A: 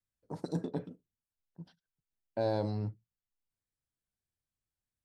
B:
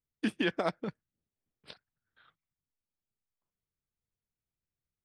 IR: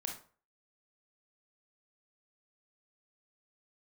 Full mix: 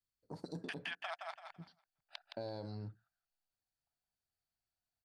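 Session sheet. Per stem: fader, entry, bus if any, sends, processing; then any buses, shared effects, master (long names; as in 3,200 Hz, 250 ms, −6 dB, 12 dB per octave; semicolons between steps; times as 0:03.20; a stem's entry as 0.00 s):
−5.0 dB, 0.00 s, no send, no echo send, parametric band 4,500 Hz +12.5 dB 0.21 octaves
+1.5 dB, 0.45 s, no send, echo send −5.5 dB, adaptive Wiener filter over 41 samples; elliptic high-pass filter 700 Hz, stop band 40 dB; multiband upward and downward compressor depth 40%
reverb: not used
echo: repeating echo 167 ms, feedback 22%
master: downward compressor 4 to 1, threshold −41 dBFS, peak gain reduction 10.5 dB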